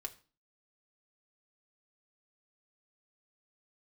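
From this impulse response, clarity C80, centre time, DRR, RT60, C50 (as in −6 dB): 21.5 dB, 6 ms, 2.5 dB, 0.35 s, 17.5 dB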